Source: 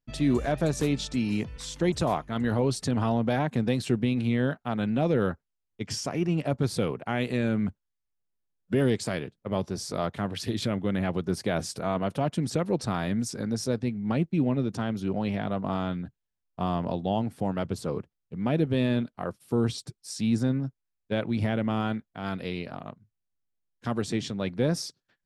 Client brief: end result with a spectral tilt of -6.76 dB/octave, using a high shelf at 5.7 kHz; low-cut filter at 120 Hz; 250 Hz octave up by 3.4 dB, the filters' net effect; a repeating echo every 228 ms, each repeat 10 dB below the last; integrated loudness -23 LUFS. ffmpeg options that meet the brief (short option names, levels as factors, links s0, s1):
-af "highpass=120,equalizer=f=250:t=o:g=4.5,highshelf=f=5700:g=-7,aecho=1:1:228|456|684|912:0.316|0.101|0.0324|0.0104,volume=1.5"